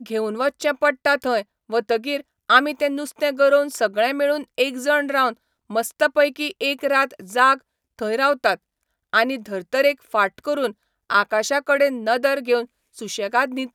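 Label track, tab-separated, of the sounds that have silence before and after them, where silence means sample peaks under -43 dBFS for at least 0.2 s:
1.690000	2.210000	sound
2.500000	5.330000	sound
5.700000	7.580000	sound
7.990000	8.560000	sound
9.130000	10.720000	sound
11.100000	12.650000	sound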